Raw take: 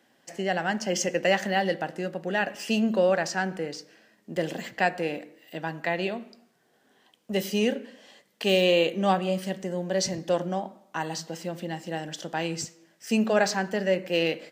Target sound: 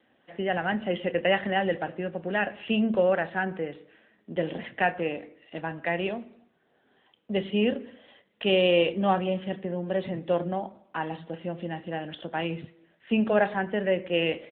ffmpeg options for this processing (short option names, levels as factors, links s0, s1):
-filter_complex "[0:a]asplit=2[s0][s1];[s1]adelay=29,volume=0.211[s2];[s0][s2]amix=inputs=2:normalize=0" -ar 8000 -c:a libopencore_amrnb -b:a 10200